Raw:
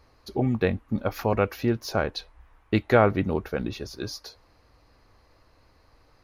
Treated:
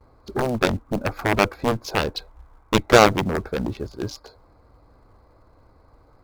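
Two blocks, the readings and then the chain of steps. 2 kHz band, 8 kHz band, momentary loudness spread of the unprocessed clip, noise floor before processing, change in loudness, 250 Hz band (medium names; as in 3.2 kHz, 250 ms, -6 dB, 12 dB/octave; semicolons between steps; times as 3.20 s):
+7.5 dB, +11.5 dB, 15 LU, -61 dBFS, +4.0 dB, +2.0 dB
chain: local Wiener filter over 15 samples; band-stop 1.8 kHz, Q 6.8; in parallel at -6.5 dB: short-mantissa float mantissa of 2-bit; on the sum: Chebyshev shaper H 6 -23 dB, 7 -10 dB, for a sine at -3 dBFS; gate with hold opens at -49 dBFS; trim +1.5 dB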